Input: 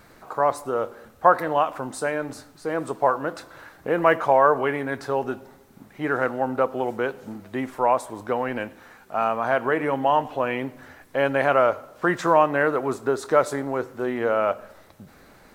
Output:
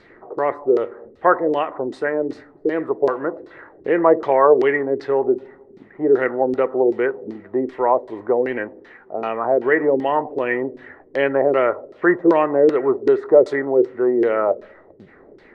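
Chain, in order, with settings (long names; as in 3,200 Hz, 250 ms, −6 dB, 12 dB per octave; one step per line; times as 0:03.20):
auto-filter low-pass saw down 2.6 Hz 330–4,700 Hz
hollow resonant body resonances 380/1,900 Hz, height 14 dB, ringing for 20 ms
level −4.5 dB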